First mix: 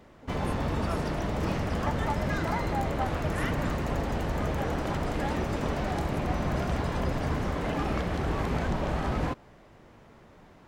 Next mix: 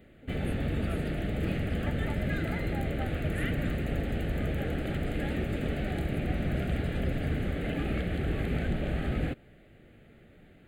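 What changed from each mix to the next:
master: add static phaser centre 2.4 kHz, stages 4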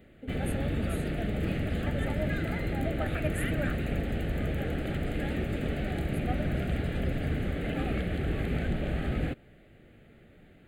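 speech +10.0 dB

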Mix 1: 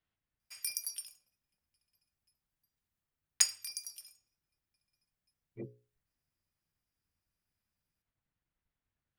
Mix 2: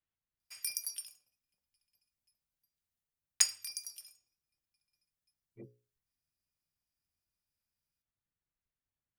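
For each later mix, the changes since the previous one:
speech -7.5 dB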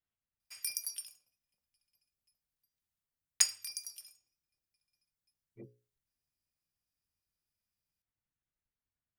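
no change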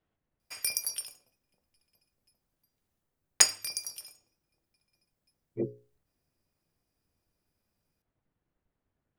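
master: remove amplifier tone stack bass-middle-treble 5-5-5

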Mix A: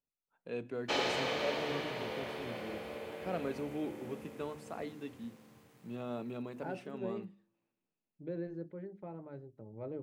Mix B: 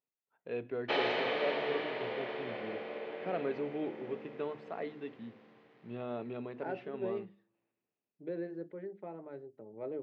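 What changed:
first voice: remove high-pass 160 Hz 24 dB/octave; second voice: remove distance through air 170 m; master: add cabinet simulation 220–3700 Hz, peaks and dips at 410 Hz +5 dB, 680 Hz +3 dB, 1.9 kHz +4 dB

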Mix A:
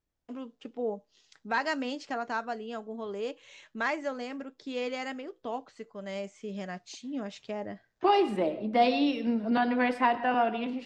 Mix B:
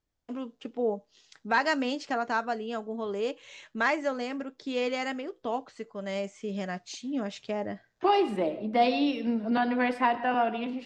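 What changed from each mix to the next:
first voice +4.0 dB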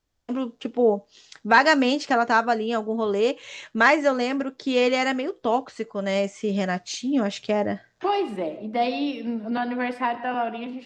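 first voice +9.0 dB

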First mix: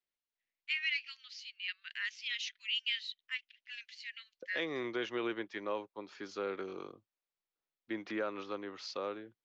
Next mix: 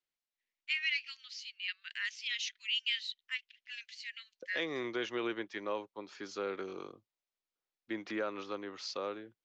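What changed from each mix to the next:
master: remove distance through air 72 m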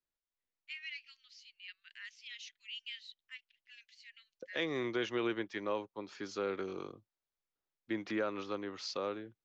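first voice -11.5 dB; master: add bass shelf 170 Hz +10 dB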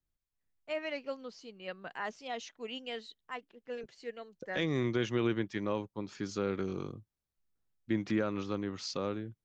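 first voice: remove steep high-pass 2 kHz 36 dB/octave; master: remove three-band isolator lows -15 dB, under 320 Hz, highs -21 dB, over 6.6 kHz

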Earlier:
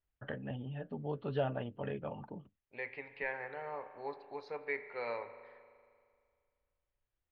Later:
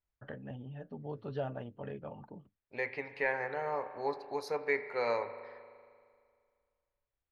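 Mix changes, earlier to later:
first voice -10.5 dB; master: remove four-pole ladder low-pass 4 kHz, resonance 35%

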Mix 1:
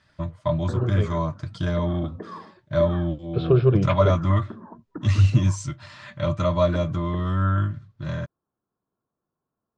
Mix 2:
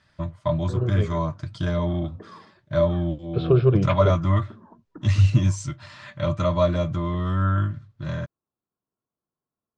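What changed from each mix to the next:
background -7.0 dB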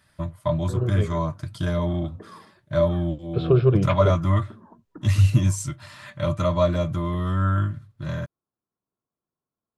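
master: remove low-pass 6.7 kHz 24 dB/octave

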